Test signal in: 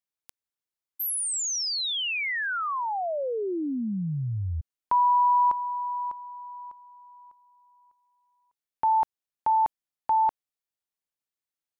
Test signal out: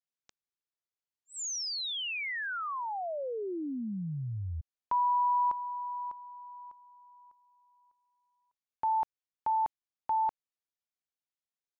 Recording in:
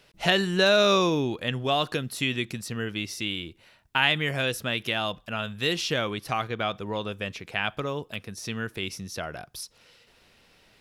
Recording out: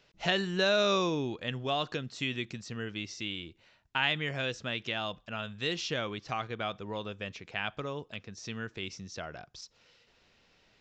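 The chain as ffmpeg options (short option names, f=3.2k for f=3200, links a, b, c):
-af "aresample=16000,aresample=44100,volume=-6.5dB"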